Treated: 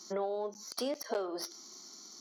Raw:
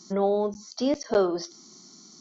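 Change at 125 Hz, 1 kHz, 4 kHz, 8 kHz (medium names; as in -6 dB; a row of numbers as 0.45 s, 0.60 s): under -15 dB, -9.0 dB, -3.5 dB, no reading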